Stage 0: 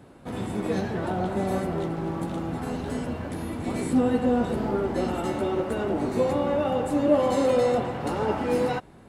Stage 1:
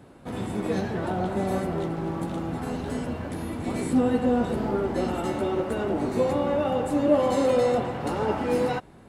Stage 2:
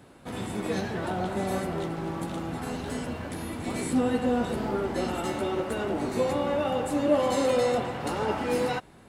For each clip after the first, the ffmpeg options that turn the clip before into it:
-af anull
-af "tiltshelf=f=1.3k:g=-3.5"

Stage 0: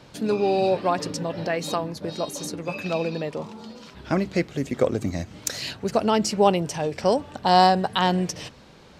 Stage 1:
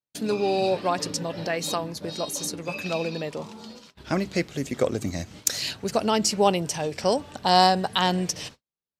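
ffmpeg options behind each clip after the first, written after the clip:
-af "agate=range=-50dB:threshold=-42dB:ratio=16:detection=peak,highshelf=f=3.2k:g=8.5,volume=-2.5dB"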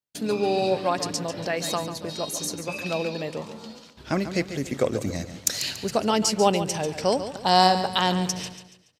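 -af "aecho=1:1:142|284|426|568:0.282|0.11|0.0429|0.0167"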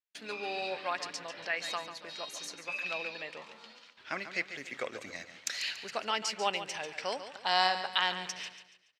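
-af "bandpass=f=2.1k:t=q:w=1.4:csg=0"

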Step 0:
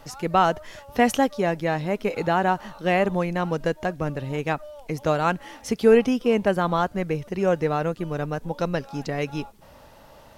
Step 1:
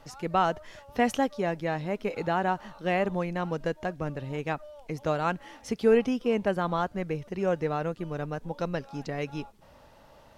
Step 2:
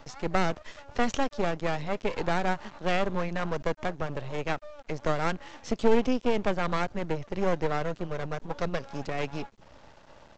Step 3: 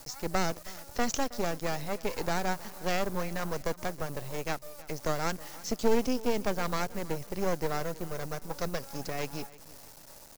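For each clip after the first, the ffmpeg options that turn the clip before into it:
-af "highshelf=f=10k:g=-8.5,volume=-5.5dB"
-filter_complex "[0:a]aresample=16000,aeval=exprs='max(val(0),0)':c=same,aresample=44100,acrossover=split=430|3000[a][b][c];[b]acompressor=threshold=-31dB:ratio=6[d];[a][d][c]amix=inputs=3:normalize=0,volume=5.5dB"
-af "acrusher=bits=8:mix=0:aa=0.000001,aexciter=amount=3.5:drive=5.4:freq=4.5k,aecho=1:1:319|638|957:0.1|0.043|0.0185,volume=-3.5dB"

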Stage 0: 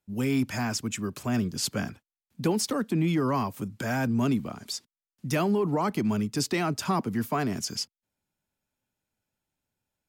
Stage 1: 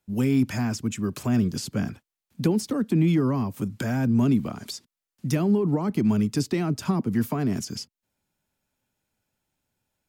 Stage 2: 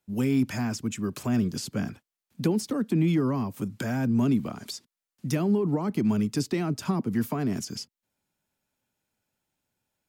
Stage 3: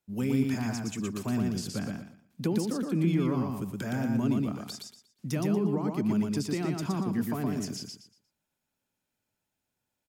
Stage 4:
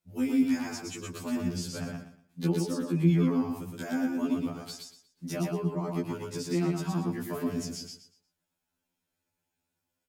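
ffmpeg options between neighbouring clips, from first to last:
-filter_complex "[0:a]acrossover=split=380[a][b];[b]acompressor=threshold=-39dB:ratio=6[c];[a][c]amix=inputs=2:normalize=0,volume=5.5dB"
-af "lowshelf=f=83:g=-7.5,volume=-1.5dB"
-af "aecho=1:1:118|236|354|472:0.708|0.191|0.0516|0.0139,volume=-4.5dB"
-af "afftfilt=real='re*2*eq(mod(b,4),0)':imag='im*2*eq(mod(b,4),0)':win_size=2048:overlap=0.75,volume=2dB"

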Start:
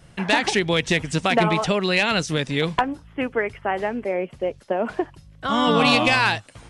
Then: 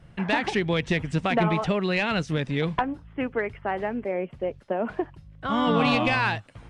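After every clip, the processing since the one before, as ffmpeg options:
-af "bass=f=250:g=4,treble=f=4k:g=-12,acontrast=28,volume=-9dB"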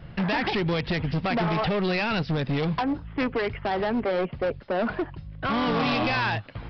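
-af "alimiter=limit=-20.5dB:level=0:latency=1:release=136,aresample=11025,asoftclip=type=hard:threshold=-30dB,aresample=44100,volume=8dB"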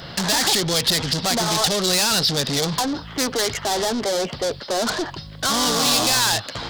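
-filter_complex "[0:a]asplit=2[a][b];[b]highpass=f=720:p=1,volume=23dB,asoftclip=type=tanh:threshold=-17.5dB[c];[a][c]amix=inputs=2:normalize=0,lowpass=f=2.3k:p=1,volume=-6dB,aexciter=amount=10.4:drive=5.9:freq=3.7k"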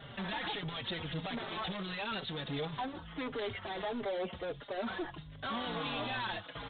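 -filter_complex "[0:a]aresample=8000,asoftclip=type=tanh:threshold=-21.5dB,aresample=44100,asplit=2[a][b];[b]adelay=4.5,afreqshift=-1.5[c];[a][c]amix=inputs=2:normalize=1,volume=-9dB"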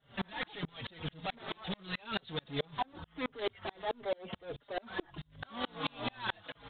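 -af "aeval=exprs='val(0)*pow(10,-36*if(lt(mod(-4.6*n/s,1),2*abs(-4.6)/1000),1-mod(-4.6*n/s,1)/(2*abs(-4.6)/1000),(mod(-4.6*n/s,1)-2*abs(-4.6)/1000)/(1-2*abs(-4.6)/1000))/20)':c=same,volume=7.5dB"

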